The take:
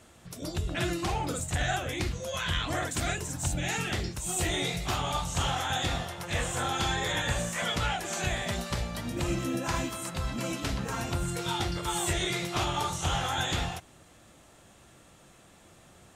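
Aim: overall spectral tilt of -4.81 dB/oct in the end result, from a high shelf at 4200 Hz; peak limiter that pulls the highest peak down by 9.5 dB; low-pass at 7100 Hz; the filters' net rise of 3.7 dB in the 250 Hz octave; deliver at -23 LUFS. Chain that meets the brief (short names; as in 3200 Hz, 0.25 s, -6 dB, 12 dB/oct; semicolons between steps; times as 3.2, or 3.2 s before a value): LPF 7100 Hz; bell 250 Hz +5.5 dB; high shelf 4200 Hz -5 dB; gain +11 dB; limiter -13.5 dBFS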